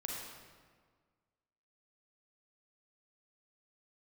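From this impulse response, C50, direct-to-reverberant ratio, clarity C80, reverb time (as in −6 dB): −1.0 dB, −2.0 dB, 1.5 dB, 1.7 s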